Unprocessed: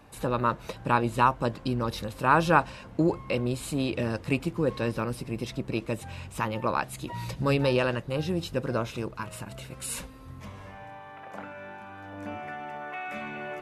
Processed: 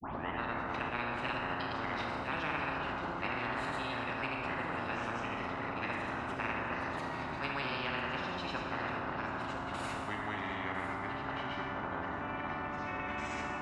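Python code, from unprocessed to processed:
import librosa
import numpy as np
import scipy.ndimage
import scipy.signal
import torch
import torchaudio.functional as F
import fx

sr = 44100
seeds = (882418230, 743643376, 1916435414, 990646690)

p1 = fx.tape_start_head(x, sr, length_s=0.44)
p2 = fx.granulator(p1, sr, seeds[0], grain_ms=100.0, per_s=20.0, spray_ms=100.0, spread_st=0)
p3 = fx.echo_pitch(p2, sr, ms=179, semitones=-5, count=3, db_per_echo=-6.0)
p4 = fx.double_bandpass(p3, sr, hz=480.0, octaves=1.7)
p5 = fx.air_absorb(p4, sr, metres=52.0)
p6 = p5 + fx.echo_single(p5, sr, ms=1003, db=-13.5, dry=0)
p7 = fx.rev_schroeder(p6, sr, rt60_s=1.3, comb_ms=26, drr_db=2.0)
p8 = fx.spectral_comp(p7, sr, ratio=10.0)
y = p8 * 10.0 ** (-7.0 / 20.0)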